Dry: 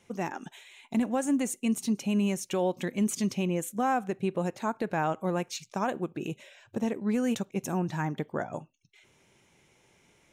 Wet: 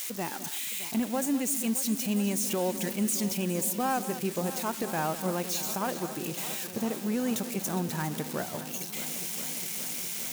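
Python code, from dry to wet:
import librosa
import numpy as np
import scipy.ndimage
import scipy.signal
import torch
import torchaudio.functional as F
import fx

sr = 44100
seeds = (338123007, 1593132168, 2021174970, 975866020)

y = x + 0.5 * 10.0 ** (-24.5 / 20.0) * np.diff(np.sign(x), prepend=np.sign(x[:1]))
y = fx.echo_alternate(y, sr, ms=205, hz=2100.0, feedback_pct=90, wet_db=-13)
y = y * librosa.db_to_amplitude(-2.0)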